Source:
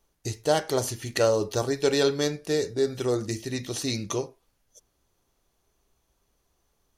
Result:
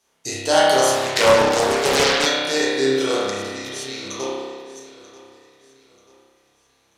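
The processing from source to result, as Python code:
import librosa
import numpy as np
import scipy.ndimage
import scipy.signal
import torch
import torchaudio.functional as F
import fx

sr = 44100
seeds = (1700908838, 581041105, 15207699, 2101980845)

y = fx.spec_trails(x, sr, decay_s=0.44)
y = scipy.signal.sosfilt(scipy.signal.butter(2, 8800.0, 'lowpass', fs=sr, output='sos'), y)
y = fx.low_shelf(y, sr, hz=170.0, db=-5.5)
y = fx.level_steps(y, sr, step_db=20, at=(3.3, 4.2))
y = scipy.signal.sosfilt(scipy.signal.butter(2, 56.0, 'highpass', fs=sr, output='sos'), y)
y = fx.tilt_eq(y, sr, slope=2.5)
y = fx.echo_feedback(y, sr, ms=937, feedback_pct=40, wet_db=-19.5)
y = fx.rev_spring(y, sr, rt60_s=1.6, pass_ms=(30,), chirp_ms=75, drr_db=-8.0)
y = fx.doppler_dist(y, sr, depth_ms=0.54, at=(0.95, 2.26))
y = F.gain(torch.from_numpy(y), 2.0).numpy()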